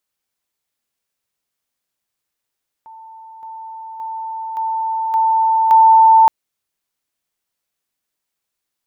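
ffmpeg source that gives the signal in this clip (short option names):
-f lavfi -i "aevalsrc='pow(10,(-35.5+6*floor(t/0.57))/20)*sin(2*PI*892*t)':d=3.42:s=44100"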